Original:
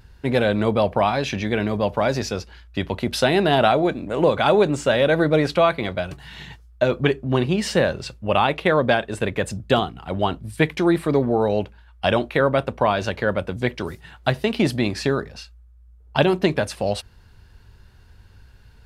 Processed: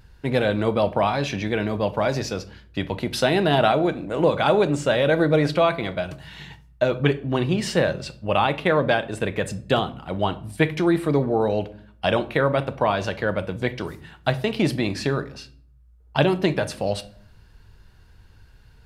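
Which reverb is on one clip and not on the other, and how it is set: simulated room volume 680 m³, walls furnished, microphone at 0.59 m; trim -2 dB

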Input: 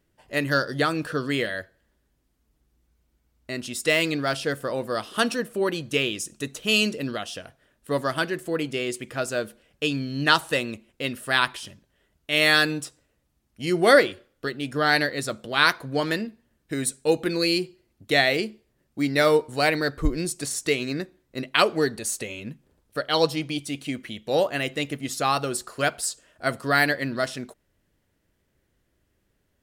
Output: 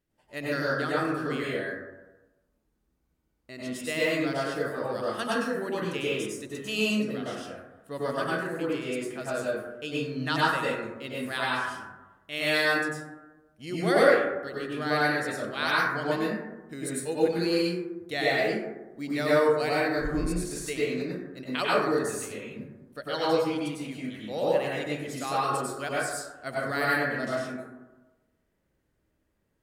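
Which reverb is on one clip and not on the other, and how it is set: plate-style reverb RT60 1.1 s, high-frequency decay 0.3×, pre-delay 85 ms, DRR -7.5 dB; trim -12 dB

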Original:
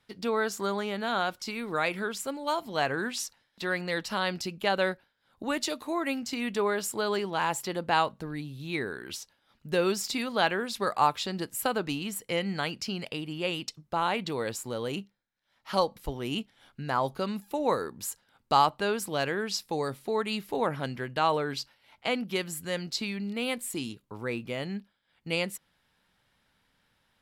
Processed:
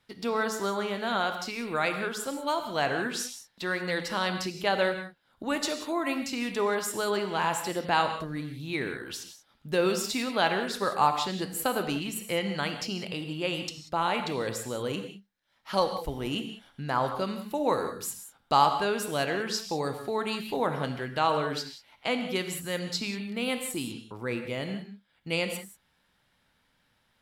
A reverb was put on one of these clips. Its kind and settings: gated-style reverb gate 210 ms flat, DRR 6.5 dB

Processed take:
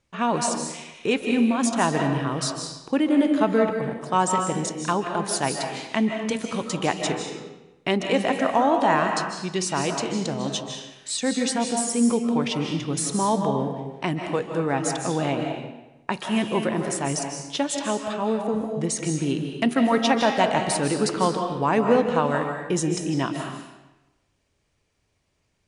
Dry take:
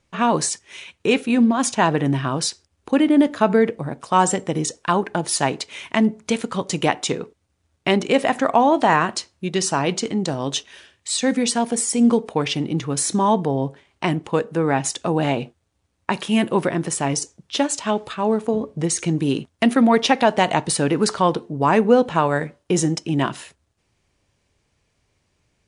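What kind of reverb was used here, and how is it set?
algorithmic reverb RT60 1 s, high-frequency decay 0.85×, pre-delay 115 ms, DRR 3.5 dB; trim -5 dB

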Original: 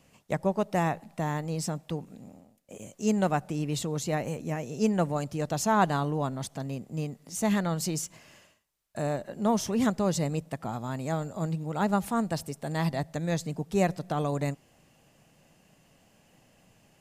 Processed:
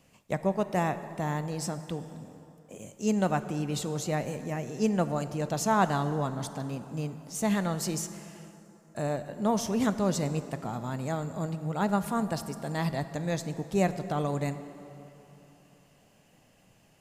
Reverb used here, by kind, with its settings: plate-style reverb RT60 3.4 s, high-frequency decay 0.6×, DRR 11 dB; trim -1 dB

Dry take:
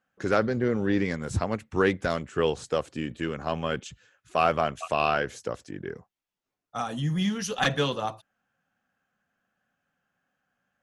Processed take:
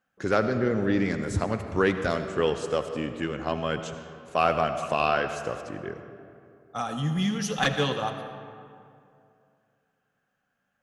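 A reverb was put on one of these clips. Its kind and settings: algorithmic reverb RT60 2.5 s, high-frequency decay 0.55×, pre-delay 40 ms, DRR 8 dB

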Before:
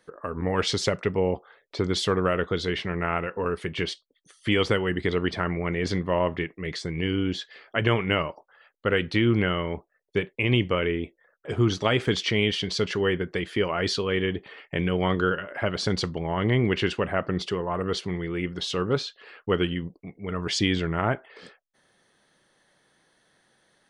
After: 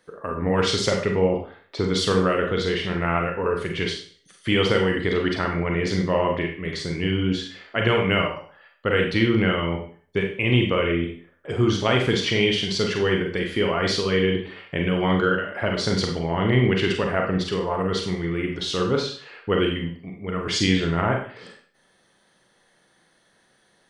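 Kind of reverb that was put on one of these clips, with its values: Schroeder reverb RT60 0.46 s, combs from 32 ms, DRR 1.5 dB; trim +1 dB

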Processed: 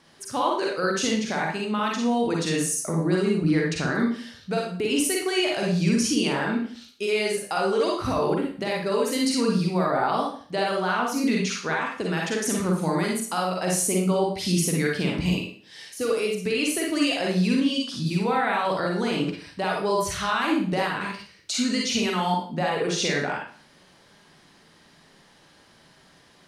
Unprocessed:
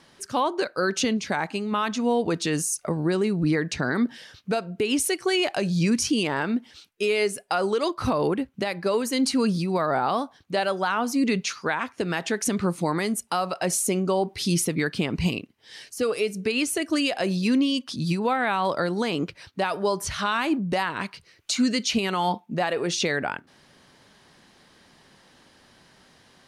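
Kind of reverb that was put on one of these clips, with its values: Schroeder reverb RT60 0.46 s, DRR -2 dB; trim -3.5 dB

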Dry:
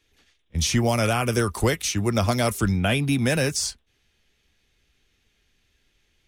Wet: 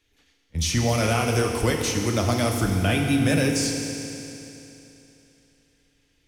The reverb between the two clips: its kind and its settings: FDN reverb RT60 3.1 s, high-frequency decay 1×, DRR 1.5 dB; trim -2.5 dB

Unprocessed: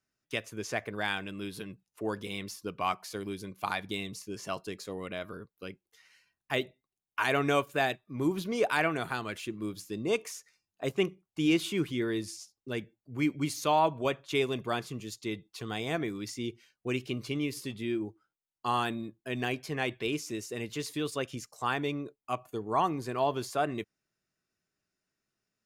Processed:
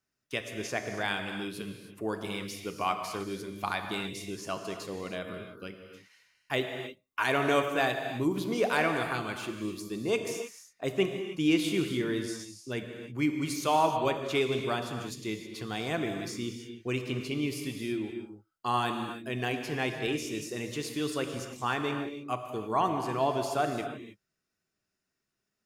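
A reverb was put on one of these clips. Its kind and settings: gated-style reverb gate 340 ms flat, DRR 5 dB

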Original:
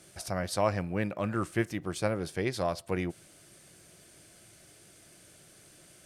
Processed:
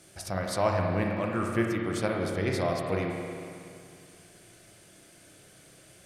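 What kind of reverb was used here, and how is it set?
spring tank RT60 2.4 s, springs 31/52 ms, chirp 30 ms, DRR 0 dB

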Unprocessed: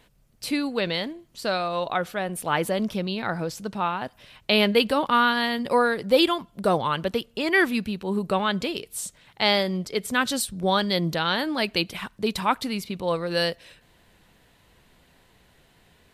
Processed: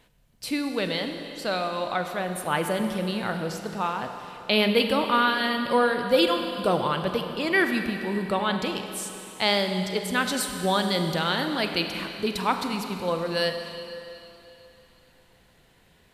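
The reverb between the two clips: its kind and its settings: Schroeder reverb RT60 3.1 s, combs from 33 ms, DRR 5.5 dB; trim -2 dB

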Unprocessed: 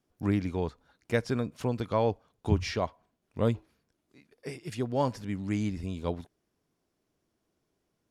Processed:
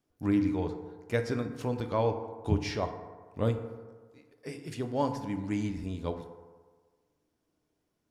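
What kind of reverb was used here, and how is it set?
FDN reverb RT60 1.5 s, low-frequency decay 0.85×, high-frequency decay 0.4×, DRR 6 dB; trim -2.5 dB

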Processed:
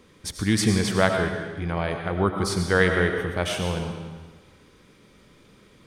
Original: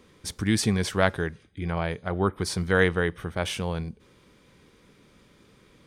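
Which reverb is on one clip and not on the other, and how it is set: algorithmic reverb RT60 1.3 s, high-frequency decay 0.95×, pre-delay 55 ms, DRR 4 dB; trim +1.5 dB

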